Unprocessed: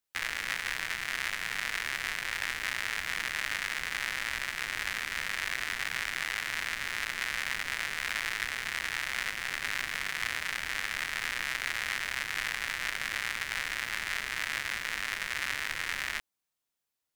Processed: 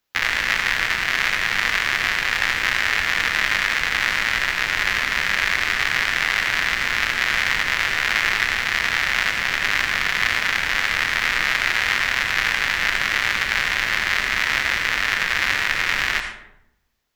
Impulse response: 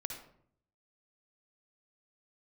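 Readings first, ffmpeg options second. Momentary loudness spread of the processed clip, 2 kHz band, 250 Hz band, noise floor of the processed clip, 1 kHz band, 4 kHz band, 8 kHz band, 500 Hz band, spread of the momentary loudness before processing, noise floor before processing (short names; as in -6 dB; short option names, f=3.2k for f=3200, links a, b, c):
1 LU, +13.5 dB, +14.0 dB, -44 dBFS, +13.5 dB, +12.5 dB, +8.0 dB, +14.0 dB, 1 LU, under -85 dBFS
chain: -filter_complex "[0:a]asplit=2[a][b];[b]lowpass=f=9.2k:w=0.5412,lowpass=f=9.2k:w=1.3066[c];[1:a]atrim=start_sample=2205,asetrate=31752,aresample=44100[d];[c][d]afir=irnorm=-1:irlink=0,volume=2.5dB[e];[a][e]amix=inputs=2:normalize=0,volume=6dB"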